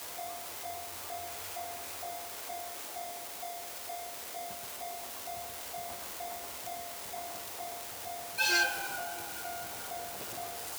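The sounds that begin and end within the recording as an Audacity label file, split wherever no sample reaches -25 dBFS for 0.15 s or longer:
8.390000	8.660000	sound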